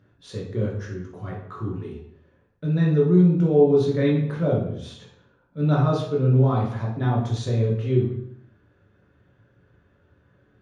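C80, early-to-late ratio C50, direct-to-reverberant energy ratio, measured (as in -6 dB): 7.5 dB, 3.5 dB, -4.5 dB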